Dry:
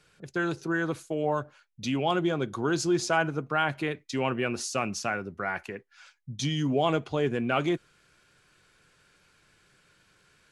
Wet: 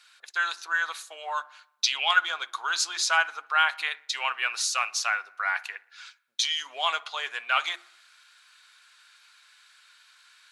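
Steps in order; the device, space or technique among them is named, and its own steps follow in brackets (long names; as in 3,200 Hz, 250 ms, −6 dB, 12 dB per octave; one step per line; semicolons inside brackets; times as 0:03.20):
mains-hum notches 50/100/150/200/250/300/350 Hz
0:01.82–0:02.25: parametric band 5,900 Hz → 1,200 Hz +14 dB 0.38 octaves
headphones lying on a table (high-pass filter 1,000 Hz 24 dB per octave; parametric band 3,900 Hz +8 dB 0.38 octaves)
delay with a low-pass on its return 61 ms, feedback 57%, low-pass 1,900 Hz, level −21 dB
level +6 dB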